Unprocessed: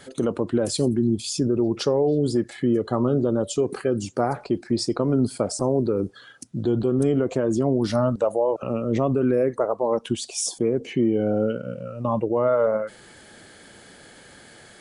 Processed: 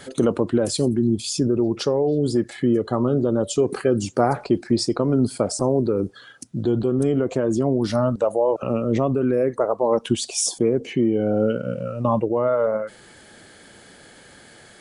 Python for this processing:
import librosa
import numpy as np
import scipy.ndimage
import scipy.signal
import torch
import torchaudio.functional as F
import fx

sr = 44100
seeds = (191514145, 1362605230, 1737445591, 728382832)

y = fx.rider(x, sr, range_db=4, speed_s=0.5)
y = y * 10.0 ** (2.0 / 20.0)